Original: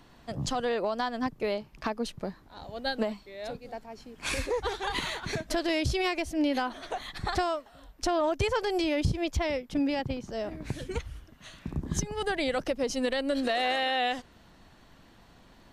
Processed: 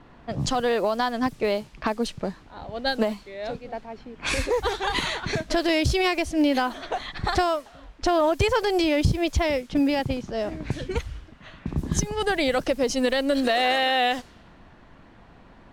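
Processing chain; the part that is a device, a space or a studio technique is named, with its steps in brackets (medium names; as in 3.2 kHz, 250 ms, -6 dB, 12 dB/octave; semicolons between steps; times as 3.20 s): cassette deck with a dynamic noise filter (white noise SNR 28 dB; level-controlled noise filter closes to 1.8 kHz, open at -26 dBFS); trim +6 dB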